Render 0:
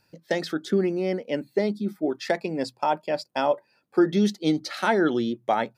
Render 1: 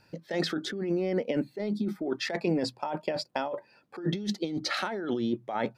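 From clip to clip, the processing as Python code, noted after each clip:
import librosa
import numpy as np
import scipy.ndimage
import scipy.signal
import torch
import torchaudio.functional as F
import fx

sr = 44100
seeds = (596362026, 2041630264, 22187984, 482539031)

y = fx.high_shelf(x, sr, hz=6900.0, db=-12.0)
y = fx.over_compress(y, sr, threshold_db=-30.0, ratio=-1.0)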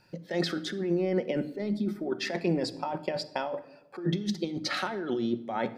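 y = fx.room_shoebox(x, sr, seeds[0], volume_m3=3400.0, walls='furnished', distance_m=0.99)
y = F.gain(torch.from_numpy(y), -1.0).numpy()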